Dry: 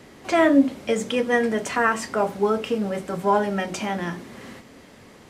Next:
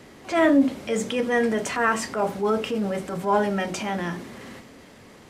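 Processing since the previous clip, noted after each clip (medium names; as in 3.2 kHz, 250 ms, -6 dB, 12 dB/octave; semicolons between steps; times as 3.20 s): transient shaper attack -6 dB, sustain +2 dB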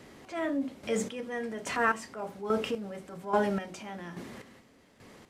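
square tremolo 1.2 Hz, depth 65%, duty 30%; trim -4.5 dB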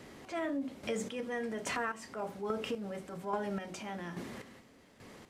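compression 6:1, threshold -32 dBFS, peak gain reduction 11.5 dB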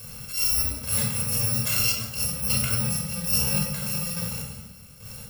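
bit-reversed sample order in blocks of 128 samples; simulated room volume 2200 m³, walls furnished, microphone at 5.3 m; attacks held to a fixed rise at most 130 dB/s; trim +8.5 dB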